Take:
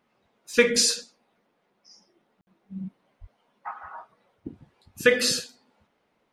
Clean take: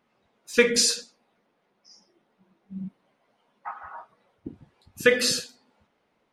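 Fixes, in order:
high-pass at the plosives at 0:03.20
ambience match 0:02.41–0:02.47

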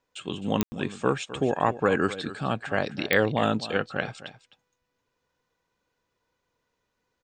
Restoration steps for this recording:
click removal
ambience match 0:00.63–0:00.72
echo removal 259 ms −14.5 dB

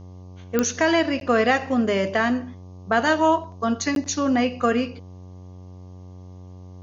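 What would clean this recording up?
click removal
hum removal 91.5 Hz, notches 13
repair the gap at 0:01.20/0:03.95, 12 ms
downward expander −33 dBFS, range −21 dB

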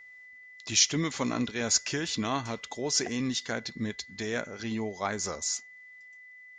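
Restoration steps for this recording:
notch filter 2,000 Hz, Q 30

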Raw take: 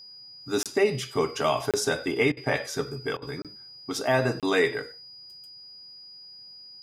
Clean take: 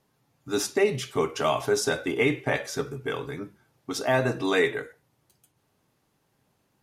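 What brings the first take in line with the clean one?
notch filter 4,900 Hz, Q 30
repair the gap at 0:00.63/0:01.71/0:03.42/0:04.40, 27 ms
repair the gap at 0:02.32/0:03.17, 48 ms
echo removal 94 ms −24 dB

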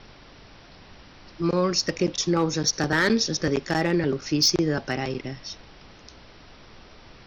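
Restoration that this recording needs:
clipped peaks rebuilt −13 dBFS
noise reduction from a noise print 21 dB

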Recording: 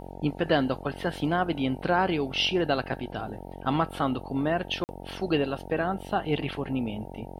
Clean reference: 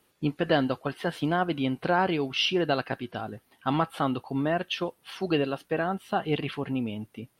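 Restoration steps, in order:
hum removal 45.8 Hz, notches 20
repair the gap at 0:04.84, 49 ms

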